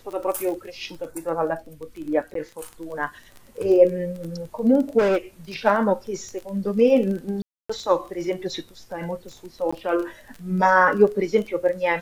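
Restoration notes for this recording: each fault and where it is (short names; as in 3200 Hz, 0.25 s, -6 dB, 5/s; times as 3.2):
crackle 15/s -29 dBFS
2.34–2.35 gap 13 ms
4.98–5.18 clipped -16.5 dBFS
7.42–7.7 gap 0.275 s
9.71–9.72 gap 15 ms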